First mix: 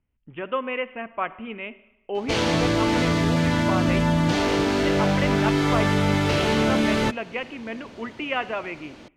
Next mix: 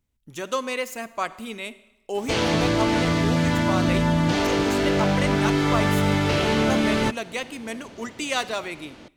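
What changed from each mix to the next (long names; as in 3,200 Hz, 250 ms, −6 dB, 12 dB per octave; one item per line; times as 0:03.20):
speech: remove Butterworth low-pass 3,100 Hz 96 dB per octave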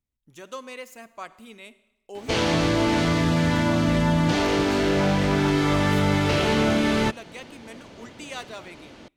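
speech −10.5 dB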